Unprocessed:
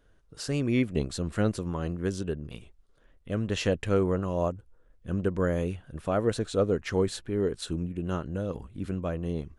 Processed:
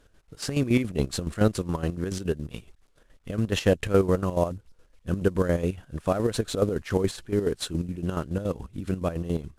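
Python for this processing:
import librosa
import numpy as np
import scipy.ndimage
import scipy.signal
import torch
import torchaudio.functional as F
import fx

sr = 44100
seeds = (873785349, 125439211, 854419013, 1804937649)

y = fx.cvsd(x, sr, bps=64000)
y = fx.chopper(y, sr, hz=7.1, depth_pct=65, duty_pct=50)
y = y * 10.0 ** (5.5 / 20.0)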